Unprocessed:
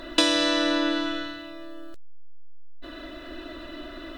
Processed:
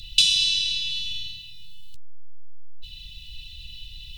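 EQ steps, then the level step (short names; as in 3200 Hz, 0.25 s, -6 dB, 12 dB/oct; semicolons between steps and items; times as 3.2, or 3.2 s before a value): Chebyshev band-stop 170–2700 Hz, order 5; +6.5 dB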